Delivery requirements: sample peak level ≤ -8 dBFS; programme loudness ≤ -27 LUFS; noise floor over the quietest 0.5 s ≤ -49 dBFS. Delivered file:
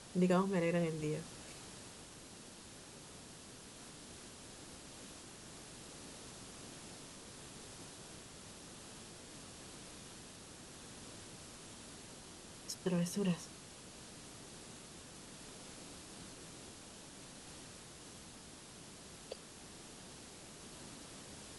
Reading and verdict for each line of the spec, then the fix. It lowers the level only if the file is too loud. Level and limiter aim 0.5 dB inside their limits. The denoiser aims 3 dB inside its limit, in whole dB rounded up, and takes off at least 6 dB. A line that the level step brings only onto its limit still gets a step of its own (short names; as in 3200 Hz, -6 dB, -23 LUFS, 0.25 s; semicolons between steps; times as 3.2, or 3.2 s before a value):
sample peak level -21.5 dBFS: OK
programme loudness -45.0 LUFS: OK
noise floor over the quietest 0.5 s -54 dBFS: OK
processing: none